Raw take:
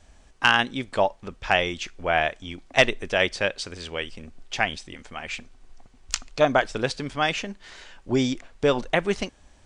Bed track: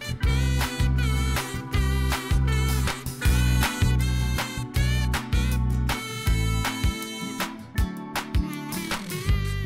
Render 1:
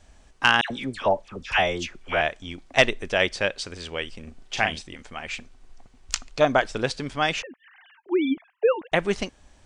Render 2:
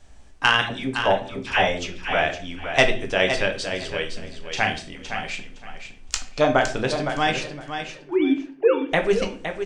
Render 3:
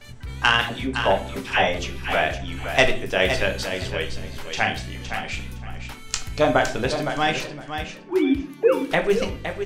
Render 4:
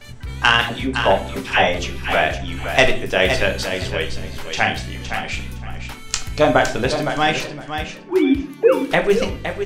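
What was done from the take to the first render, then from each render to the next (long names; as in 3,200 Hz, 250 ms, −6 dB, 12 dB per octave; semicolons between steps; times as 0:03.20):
0:00.61–0:02.21: all-pass dispersion lows, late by 92 ms, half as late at 1,400 Hz; 0:04.23–0:04.82: double-tracking delay 38 ms −5.5 dB; 0:07.42–0:08.92: three sine waves on the formant tracks
repeating echo 513 ms, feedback 19%, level −8.5 dB; rectangular room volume 41 cubic metres, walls mixed, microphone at 0.38 metres
mix in bed track −12 dB
level +4 dB; brickwall limiter −1 dBFS, peak gain reduction 1.5 dB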